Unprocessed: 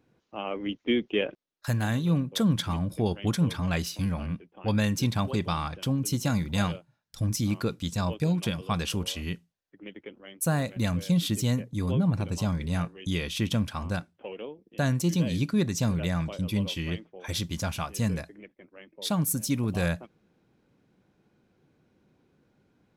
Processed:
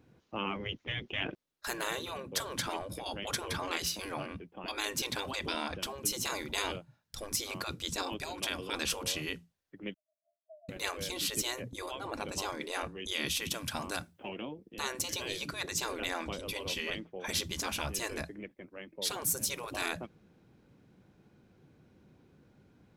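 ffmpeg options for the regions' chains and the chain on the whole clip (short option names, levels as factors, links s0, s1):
-filter_complex "[0:a]asettb=1/sr,asplit=3[s0][s1][s2];[s0]atrim=end=9.944[s3];[s1]atrim=start=9.94:end=10.69,asetpts=PTS-STARTPTS,afade=t=in:d=0.004:c=qsin,afade=t=out:st=0.746:d=0.004:c=qsin,asuperpass=centerf=640:order=20:qfactor=7.1,aderivative[s4];[s2]atrim=start=10.686[s5];[s3][s4]acrossfade=d=0.004:c1=hsin:c2=qsin[s6];[s6][s5]acrossfade=d=0.004:c1=qsin:c2=hsin,asettb=1/sr,asplit=3[s7][s8][s9];[s7]atrim=end=13.264[s10];[s8]atrim=start=13.26:end=14.3,asetpts=PTS-STARTPTS,afade=t=in:d=0.004:c=qsin,afade=t=out:st=1.036:d=0.004:c=qsin,highshelf=f=6500:g=10.5,acrossover=split=1100|4500[s11][s12][s13];[s11]acompressor=threshold=0.0316:ratio=4[s14];[s12]acompressor=threshold=0.0158:ratio=4[s15];[s13]acompressor=threshold=0.0126:ratio=4[s16];[s14][s15][s16]amix=inputs=3:normalize=0[s17];[s9]atrim=start=14.296[s18];[s10][s17]acrossfade=d=0.004:c1=hsin:c2=qsin[s19];[s19][s18]acrossfade=d=0.004:c1=qsin:c2=hsin,afftfilt=real='re*lt(hypot(re,im),0.0794)':imag='im*lt(hypot(re,im),0.0794)':win_size=1024:overlap=0.75,equalizer=f=76:w=0.54:g=5,volume=1.33"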